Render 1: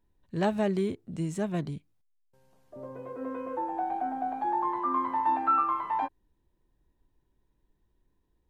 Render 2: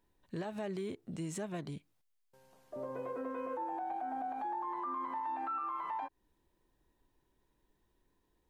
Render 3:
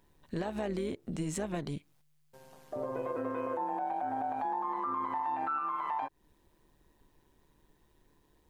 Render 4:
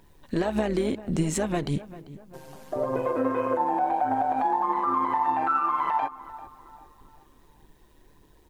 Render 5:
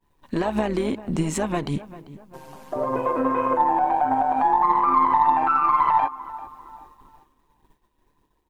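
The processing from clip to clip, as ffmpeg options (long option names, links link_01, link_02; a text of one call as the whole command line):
ffmpeg -i in.wav -af "acompressor=threshold=-37dB:ratio=2,lowshelf=frequency=230:gain=-10.5,alimiter=level_in=11.5dB:limit=-24dB:level=0:latency=1:release=98,volume=-11.5dB,volume=4dB" out.wav
ffmpeg -i in.wav -filter_complex "[0:a]asplit=2[link_01][link_02];[link_02]acompressor=threshold=-48dB:ratio=6,volume=1dB[link_03];[link_01][link_03]amix=inputs=2:normalize=0,tremolo=f=150:d=0.571,volume=4.5dB" out.wav
ffmpeg -i in.wav -filter_complex "[0:a]aphaser=in_gain=1:out_gain=1:delay=4.2:decay=0.32:speed=1.7:type=triangular,asplit=2[link_01][link_02];[link_02]adelay=393,lowpass=frequency=2000:poles=1,volume=-16dB,asplit=2[link_03][link_04];[link_04]adelay=393,lowpass=frequency=2000:poles=1,volume=0.44,asplit=2[link_05][link_06];[link_06]adelay=393,lowpass=frequency=2000:poles=1,volume=0.44,asplit=2[link_07][link_08];[link_08]adelay=393,lowpass=frequency=2000:poles=1,volume=0.44[link_09];[link_01][link_03][link_05][link_07][link_09]amix=inputs=5:normalize=0,volume=8.5dB" out.wav
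ffmpeg -i in.wav -af "equalizer=frequency=250:width_type=o:width=0.67:gain=3,equalizer=frequency=1000:width_type=o:width=0.67:gain=8,equalizer=frequency=2500:width_type=o:width=0.67:gain=3,aeval=exprs='0.473*(cos(1*acos(clip(val(0)/0.473,-1,1)))-cos(1*PI/2))+0.015*(cos(4*acos(clip(val(0)/0.473,-1,1)))-cos(4*PI/2))':channel_layout=same,agate=range=-33dB:threshold=-45dB:ratio=3:detection=peak" out.wav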